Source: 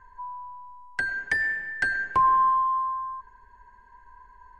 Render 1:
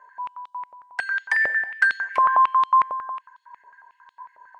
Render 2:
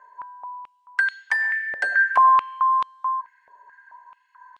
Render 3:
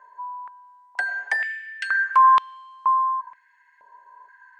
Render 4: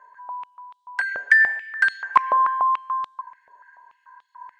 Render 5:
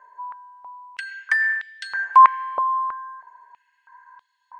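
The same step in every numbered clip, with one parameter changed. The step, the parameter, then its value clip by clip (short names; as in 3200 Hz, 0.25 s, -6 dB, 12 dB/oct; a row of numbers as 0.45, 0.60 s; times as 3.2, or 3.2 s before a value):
stepped high-pass, rate: 11, 4.6, 2.1, 6.9, 3.1 Hz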